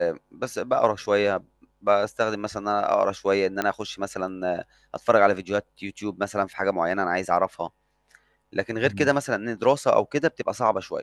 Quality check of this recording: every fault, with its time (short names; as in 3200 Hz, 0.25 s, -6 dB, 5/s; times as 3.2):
3.62 pop -11 dBFS